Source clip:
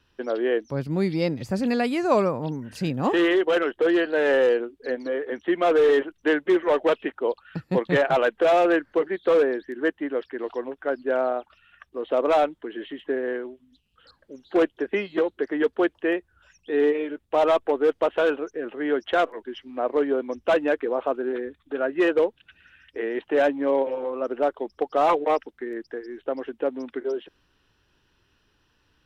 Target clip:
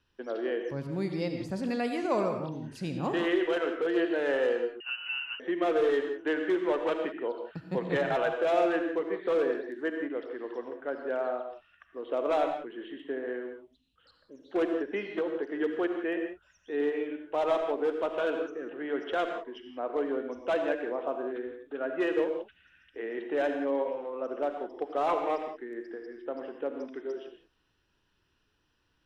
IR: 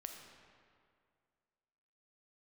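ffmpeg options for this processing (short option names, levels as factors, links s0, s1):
-filter_complex "[1:a]atrim=start_sample=2205,atrim=end_sample=4410,asetrate=22491,aresample=44100[s0];[0:a][s0]afir=irnorm=-1:irlink=0,asettb=1/sr,asplit=3[s1][s2][s3];[s1]atrim=end=4.804[s4];[s2]atrim=start=4.8:end=5.4,asetpts=PTS-STARTPTS,afade=t=in:d=0.004:c=qsin,afade=t=out:st=0.596:d=0.004:c=qsin,lowpass=f=2700:t=q:w=0.5098,lowpass=f=2700:t=q:w=0.6013,lowpass=f=2700:t=q:w=0.9,lowpass=f=2700:t=q:w=2.563,afreqshift=-3200[s5];[s3]atrim=start=5.396[s6];[s4][s5]acrossfade=d=0.004:c1=hsin:c2=qsin[s7];[s7][s6]acrossfade=d=0.004:c1=qsin:c2=hsin,volume=0.473"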